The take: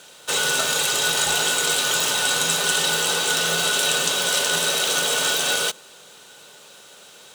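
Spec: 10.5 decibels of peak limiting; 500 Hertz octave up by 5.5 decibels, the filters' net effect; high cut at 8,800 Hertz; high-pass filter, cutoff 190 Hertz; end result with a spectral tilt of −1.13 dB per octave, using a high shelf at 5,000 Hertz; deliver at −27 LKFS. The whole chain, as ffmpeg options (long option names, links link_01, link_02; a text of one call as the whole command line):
ffmpeg -i in.wav -af "highpass=190,lowpass=8800,equalizer=frequency=500:width_type=o:gain=6.5,highshelf=frequency=5000:gain=6.5,volume=-6.5dB,alimiter=limit=-19.5dB:level=0:latency=1" out.wav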